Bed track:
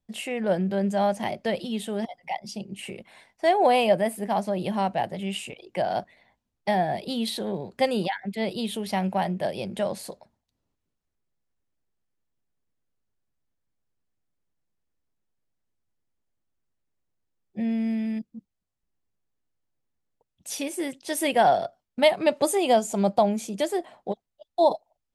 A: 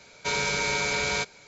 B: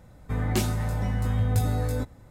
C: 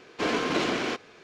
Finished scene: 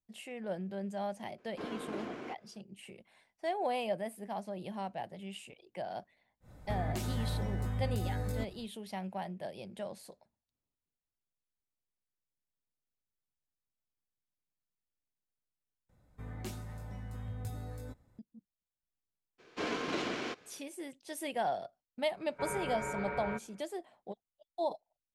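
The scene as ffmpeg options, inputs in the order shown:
ffmpeg -i bed.wav -i cue0.wav -i cue1.wav -i cue2.wav -filter_complex "[3:a]asplit=2[link_01][link_02];[2:a]asplit=2[link_03][link_04];[0:a]volume=-14dB[link_05];[link_01]equalizer=frequency=4700:width=0.49:gain=-13[link_06];[link_03]alimiter=limit=-23.5dB:level=0:latency=1:release=184[link_07];[1:a]lowpass=frequency=1700:width=0.5412,lowpass=frequency=1700:width=1.3066[link_08];[link_05]asplit=2[link_09][link_10];[link_09]atrim=end=15.894[link_11];[link_04]atrim=end=2.3,asetpts=PTS-STARTPTS,volume=-17dB[link_12];[link_10]atrim=start=18.186[link_13];[link_06]atrim=end=1.23,asetpts=PTS-STARTPTS,volume=-13dB,afade=type=in:duration=0.004:curve=hsin,afade=type=out:start_time=1.226:duration=0.004:curve=hsin,adelay=1380[link_14];[link_07]atrim=end=2.3,asetpts=PTS-STARTPTS,volume=-4dB,afade=type=in:duration=0.1,afade=type=out:start_time=2.2:duration=0.1,adelay=6400[link_15];[link_02]atrim=end=1.23,asetpts=PTS-STARTPTS,volume=-9dB,afade=type=in:duration=0.02,afade=type=out:start_time=1.21:duration=0.02,adelay=19380[link_16];[link_08]atrim=end=1.47,asetpts=PTS-STARTPTS,volume=-7.5dB,afade=type=in:duration=0.004:curve=hsin,afade=type=out:start_time=1.466:duration=0.004:curve=hsin,adelay=22140[link_17];[link_11][link_12]acrossfade=duration=0.004:curve1=hsin:curve2=hsin[link_18];[link_18][link_13]acrossfade=duration=0.004:curve1=hsin:curve2=hsin[link_19];[link_19][link_14][link_15][link_16][link_17]amix=inputs=5:normalize=0" out.wav

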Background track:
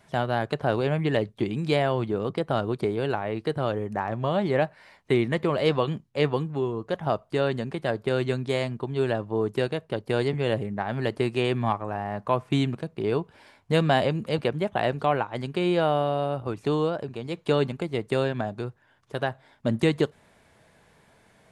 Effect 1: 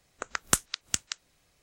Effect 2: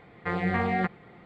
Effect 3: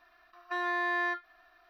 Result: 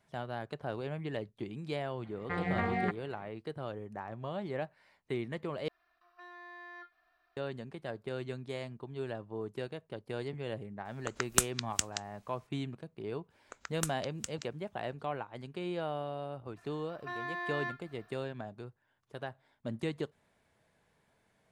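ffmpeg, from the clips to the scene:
ffmpeg -i bed.wav -i cue0.wav -i cue1.wav -i cue2.wav -filter_complex "[3:a]asplit=2[link_01][link_02];[1:a]asplit=2[link_03][link_04];[0:a]volume=-13.5dB[link_05];[link_01]alimiter=level_in=6.5dB:limit=-24dB:level=0:latency=1:release=12,volume=-6.5dB[link_06];[link_02]alimiter=level_in=5dB:limit=-24dB:level=0:latency=1:release=71,volume=-5dB[link_07];[link_05]asplit=2[link_08][link_09];[link_08]atrim=end=5.684[link_10];[link_06]atrim=end=1.69,asetpts=PTS-STARTPTS,volume=-11.5dB[link_11];[link_09]atrim=start=7.366[link_12];[2:a]atrim=end=1.25,asetpts=PTS-STARTPTS,volume=-6dB,afade=type=in:duration=0.004:curve=hsin,afade=type=out:start_time=1.246:duration=0.004:curve=hsin,adelay=2040[link_13];[link_03]atrim=end=1.62,asetpts=PTS-STARTPTS,volume=-3dB,afade=type=in:duration=0.004:curve=hsin,afade=type=out:start_time=1.616:duration=0.004:curve=hsin,adelay=10850[link_14];[link_04]atrim=end=1.62,asetpts=PTS-STARTPTS,volume=-12.5dB,afade=type=in:duration=0.004:curve=hsin,afade=type=out:start_time=1.616:duration=0.004:curve=hsin,adelay=13300[link_15];[link_07]atrim=end=1.69,asetpts=PTS-STARTPTS,volume=-1.5dB,afade=type=in:duration=0.004:curve=hsin,afade=type=out:start_time=1.686:duration=0.004:curve=hsin,adelay=16560[link_16];[link_10][link_11]acrossfade=duration=0.004:curve1=hsin:curve2=hsin[link_17];[link_17][link_12]acrossfade=duration=0.004:curve1=hsin:curve2=hsin[link_18];[link_18][link_13][link_14][link_15][link_16]amix=inputs=5:normalize=0" out.wav

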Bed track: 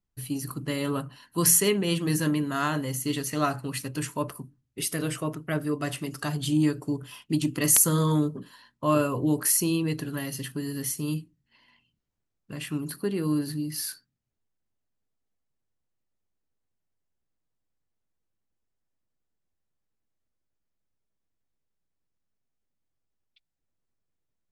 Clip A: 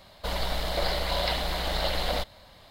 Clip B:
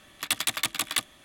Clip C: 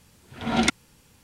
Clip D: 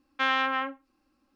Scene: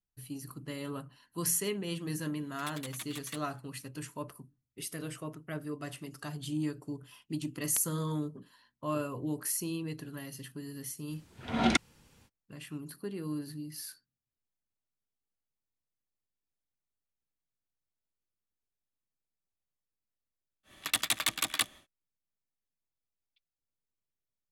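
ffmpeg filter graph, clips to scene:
ffmpeg -i bed.wav -i cue0.wav -i cue1.wav -i cue2.wav -filter_complex "[2:a]asplit=2[link_01][link_02];[0:a]volume=-10.5dB[link_03];[link_01]asplit=2[link_04][link_05];[link_05]adelay=5.8,afreqshift=-1.8[link_06];[link_04][link_06]amix=inputs=2:normalize=1[link_07];[3:a]highshelf=frequency=6800:gain=-5.5[link_08];[link_07]atrim=end=1.24,asetpts=PTS-STARTPTS,volume=-14.5dB,afade=type=in:duration=0.004:curve=hsin,afade=type=out:start_time=1.236:duration=0.004:curve=hsin,adelay=2360[link_09];[link_08]atrim=end=1.23,asetpts=PTS-STARTPTS,volume=-4dB,afade=type=in:duration=0.05,afade=type=out:start_time=1.18:duration=0.05,adelay=11070[link_10];[link_02]atrim=end=1.24,asetpts=PTS-STARTPTS,volume=-2.5dB,afade=type=in:duration=0.1,afade=type=out:start_time=1.14:duration=0.1,adelay=20630[link_11];[link_03][link_09][link_10][link_11]amix=inputs=4:normalize=0" out.wav

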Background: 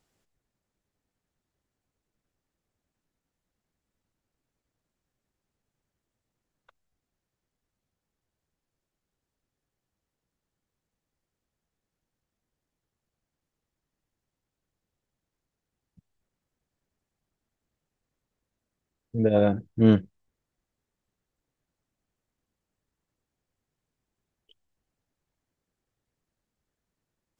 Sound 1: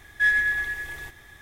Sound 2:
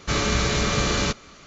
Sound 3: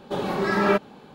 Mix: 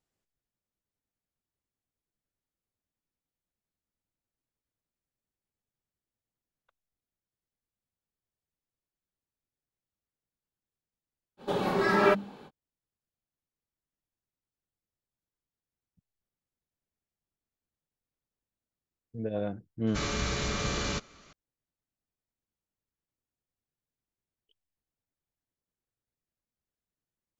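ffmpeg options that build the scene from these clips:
ffmpeg -i bed.wav -i cue0.wav -i cue1.wav -i cue2.wav -filter_complex "[0:a]volume=-11.5dB[link_01];[3:a]bandreject=frequency=50:width_type=h:width=6,bandreject=frequency=100:width_type=h:width=6,bandreject=frequency=150:width_type=h:width=6,bandreject=frequency=200:width_type=h:width=6,bandreject=frequency=250:width_type=h:width=6,bandreject=frequency=300:width_type=h:width=6,bandreject=frequency=350:width_type=h:width=6,atrim=end=1.14,asetpts=PTS-STARTPTS,volume=-2dB,afade=type=in:duration=0.05,afade=type=out:start_time=1.09:duration=0.05,adelay=11370[link_02];[2:a]atrim=end=1.46,asetpts=PTS-STARTPTS,volume=-9dB,afade=type=in:duration=0.004:curve=hsin,afade=type=out:start_time=1.456:duration=0.004:curve=hsin,adelay=19870[link_03];[link_01][link_02][link_03]amix=inputs=3:normalize=0" out.wav

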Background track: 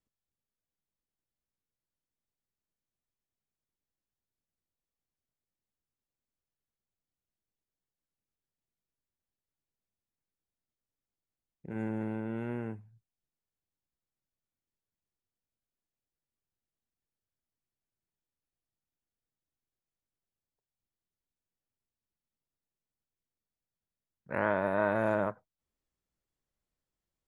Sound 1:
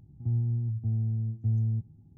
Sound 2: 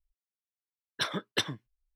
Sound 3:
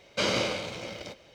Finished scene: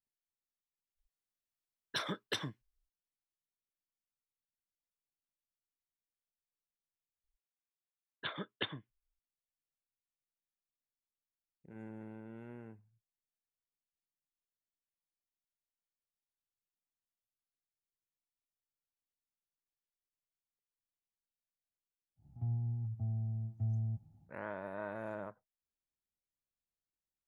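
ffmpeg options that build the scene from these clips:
ffmpeg -i bed.wav -i cue0.wav -i cue1.wav -filter_complex "[2:a]asplit=2[link_01][link_02];[0:a]volume=-13.5dB[link_03];[link_01]acompressor=threshold=-34dB:ratio=6:attack=36:release=21:knee=6:detection=rms[link_04];[link_02]aresample=8000,aresample=44100[link_05];[1:a]lowshelf=frequency=520:width_type=q:width=3:gain=-7[link_06];[link_03]asplit=2[link_07][link_08];[link_07]atrim=end=7.244[link_09];[link_05]atrim=end=1.95,asetpts=PTS-STARTPTS,volume=-8dB[link_10];[link_08]atrim=start=9.186[link_11];[link_04]atrim=end=1.95,asetpts=PTS-STARTPTS,volume=-2.5dB,afade=type=in:duration=0.05,afade=type=out:start_time=1.9:duration=0.05,adelay=950[link_12];[link_06]atrim=end=2.17,asetpts=PTS-STARTPTS,volume=-1dB,afade=type=in:duration=0.1,afade=type=out:start_time=2.07:duration=0.1,adelay=22160[link_13];[link_09][link_10]acrossfade=duration=0.004:curve1=hsin:curve2=hsin[link_14];[link_14][link_11]acrossfade=duration=0.004:curve1=hsin:curve2=hsin[link_15];[link_15][link_12][link_13]amix=inputs=3:normalize=0" out.wav

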